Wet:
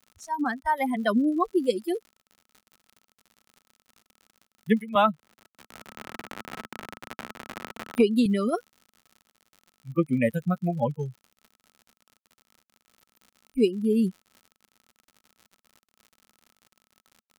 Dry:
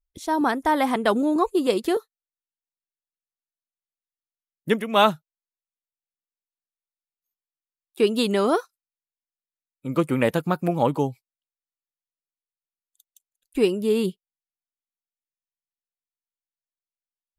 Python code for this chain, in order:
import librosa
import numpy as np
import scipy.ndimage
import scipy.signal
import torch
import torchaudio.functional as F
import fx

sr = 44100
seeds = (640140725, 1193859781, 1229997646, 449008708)

y = fx.bin_expand(x, sr, power=2.0)
y = fx.noise_reduce_blind(y, sr, reduce_db=22)
y = fx.dmg_crackle(y, sr, seeds[0], per_s=75.0, level_db=-41.0)
y = fx.small_body(y, sr, hz=(220.0, 1300.0), ring_ms=45, db=7)
y = fx.band_squash(y, sr, depth_pct=100, at=(4.95, 8.26))